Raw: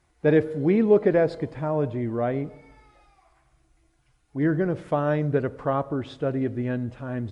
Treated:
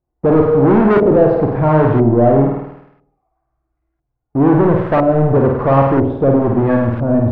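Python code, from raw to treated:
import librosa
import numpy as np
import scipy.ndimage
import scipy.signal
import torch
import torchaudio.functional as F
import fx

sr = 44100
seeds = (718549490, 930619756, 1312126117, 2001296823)

y = fx.leveller(x, sr, passes=5)
y = fx.room_flutter(y, sr, wall_m=8.8, rt60_s=0.74)
y = fx.filter_lfo_lowpass(y, sr, shape='saw_up', hz=1.0, low_hz=590.0, high_hz=1600.0, q=1.1)
y = F.gain(torch.from_numpy(y), -1.0).numpy()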